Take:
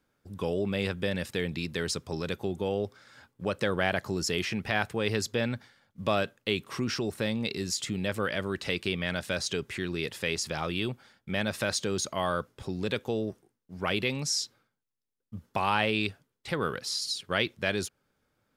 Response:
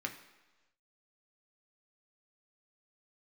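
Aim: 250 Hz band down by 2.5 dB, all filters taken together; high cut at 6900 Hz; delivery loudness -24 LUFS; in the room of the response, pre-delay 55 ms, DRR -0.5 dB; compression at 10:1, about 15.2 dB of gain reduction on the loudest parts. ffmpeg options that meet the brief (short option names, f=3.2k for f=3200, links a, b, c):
-filter_complex "[0:a]lowpass=6.9k,equalizer=f=250:t=o:g=-3.5,acompressor=threshold=-38dB:ratio=10,asplit=2[a][b];[1:a]atrim=start_sample=2205,adelay=55[c];[b][c]afir=irnorm=-1:irlink=0,volume=-1.5dB[d];[a][d]amix=inputs=2:normalize=0,volume=16.5dB"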